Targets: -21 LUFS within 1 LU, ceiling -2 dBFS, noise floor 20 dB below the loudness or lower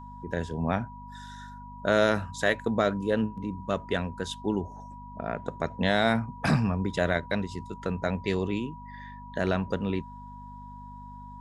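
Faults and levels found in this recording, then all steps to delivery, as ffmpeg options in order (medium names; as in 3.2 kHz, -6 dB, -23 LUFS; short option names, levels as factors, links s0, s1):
hum 50 Hz; highest harmonic 250 Hz; hum level -44 dBFS; steady tone 970 Hz; tone level -44 dBFS; loudness -29.0 LUFS; peak level -8.5 dBFS; loudness target -21.0 LUFS
-> -af "bandreject=f=50:t=h:w=4,bandreject=f=100:t=h:w=4,bandreject=f=150:t=h:w=4,bandreject=f=200:t=h:w=4,bandreject=f=250:t=h:w=4"
-af "bandreject=f=970:w=30"
-af "volume=2.51,alimiter=limit=0.794:level=0:latency=1"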